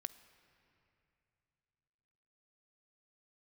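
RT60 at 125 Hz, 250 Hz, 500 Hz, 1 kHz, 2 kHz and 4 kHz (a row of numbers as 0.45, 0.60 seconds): 3.6, 3.3, 3.0, 2.8, 2.8, 2.1 seconds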